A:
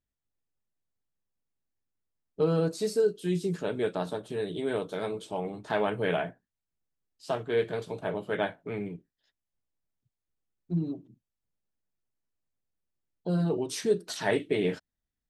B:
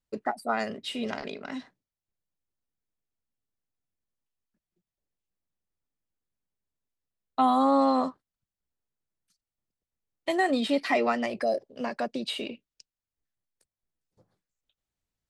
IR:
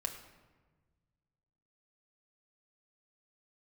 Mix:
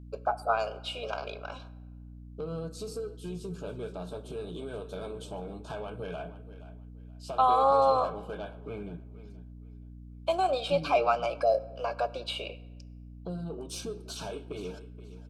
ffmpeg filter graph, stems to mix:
-filter_complex "[0:a]bandreject=f=2.3k:w=23,acompressor=threshold=-34dB:ratio=6,asoftclip=type=tanh:threshold=-29.5dB,volume=-2.5dB,asplit=3[a][b][c];[b]volume=-6.5dB[d];[c]volume=-12.5dB[e];[1:a]highpass=f=480:w=0.5412,highpass=f=480:w=1.3066,highshelf=f=4.3k:g=-9.5,volume=-0.5dB,asplit=2[f][g];[g]volume=-7.5dB[h];[2:a]atrim=start_sample=2205[i];[d][h]amix=inputs=2:normalize=0[j];[j][i]afir=irnorm=-1:irlink=0[k];[e]aecho=0:1:475|950|1425|1900:1|0.24|0.0576|0.0138[l];[a][f][k][l]amix=inputs=4:normalize=0,asuperstop=centerf=1900:order=12:qfactor=3.4,aeval=exprs='val(0)+0.00562*(sin(2*PI*60*n/s)+sin(2*PI*2*60*n/s)/2+sin(2*PI*3*60*n/s)/3+sin(2*PI*4*60*n/s)/4+sin(2*PI*5*60*n/s)/5)':c=same"

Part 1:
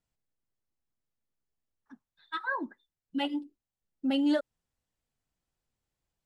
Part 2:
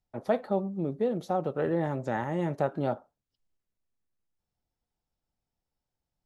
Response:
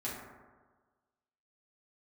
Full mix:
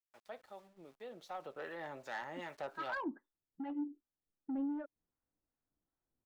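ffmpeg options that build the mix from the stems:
-filter_complex "[0:a]lowpass=f=1.6k:w=0.5412,lowpass=f=1.6k:w=1.3066,equalizer=f=300:t=o:w=0.63:g=9,acompressor=threshold=-29dB:ratio=6,adelay=450,volume=-1.5dB[a];[1:a]dynaudnorm=f=490:g=5:m=11dB,bandpass=f=2.8k:t=q:w=0.71:csg=0,aeval=exprs='val(0)*gte(abs(val(0)),0.00224)':c=same,volume=-9dB[b];[a][b]amix=inputs=2:normalize=0,lowshelf=f=350:g=-3,asoftclip=type=tanh:threshold=-31dB,acrossover=split=730[c][d];[c]aeval=exprs='val(0)*(1-0.5/2+0.5/2*cos(2*PI*2.6*n/s))':c=same[e];[d]aeval=exprs='val(0)*(1-0.5/2-0.5/2*cos(2*PI*2.6*n/s))':c=same[f];[e][f]amix=inputs=2:normalize=0"

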